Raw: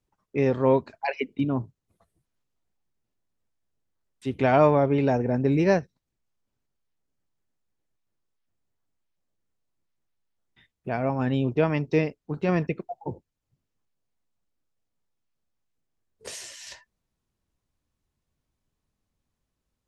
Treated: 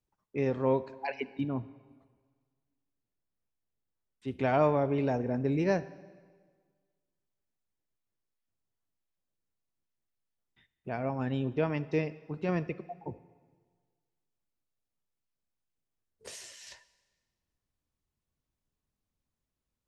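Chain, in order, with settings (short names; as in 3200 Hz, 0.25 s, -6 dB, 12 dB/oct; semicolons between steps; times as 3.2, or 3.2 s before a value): 1.48–4.28 LPF 3000 Hz 6 dB/oct; reverb RT60 1.6 s, pre-delay 35 ms, DRR 17 dB; gain -7 dB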